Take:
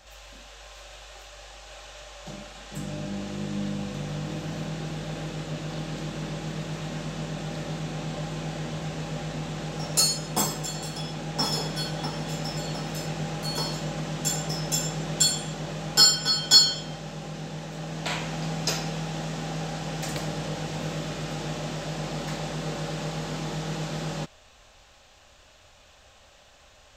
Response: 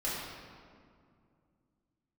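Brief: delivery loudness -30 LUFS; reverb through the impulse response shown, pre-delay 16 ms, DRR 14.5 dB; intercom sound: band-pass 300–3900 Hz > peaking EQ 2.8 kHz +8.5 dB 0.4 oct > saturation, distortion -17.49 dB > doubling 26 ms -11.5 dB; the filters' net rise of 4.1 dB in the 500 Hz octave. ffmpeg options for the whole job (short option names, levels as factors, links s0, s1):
-filter_complex "[0:a]equalizer=f=500:t=o:g=5.5,asplit=2[s0][s1];[1:a]atrim=start_sample=2205,adelay=16[s2];[s1][s2]afir=irnorm=-1:irlink=0,volume=0.0944[s3];[s0][s3]amix=inputs=2:normalize=0,highpass=300,lowpass=3900,equalizer=f=2800:t=o:w=0.4:g=8.5,asoftclip=threshold=0.168,asplit=2[s4][s5];[s5]adelay=26,volume=0.266[s6];[s4][s6]amix=inputs=2:normalize=0,volume=1.06"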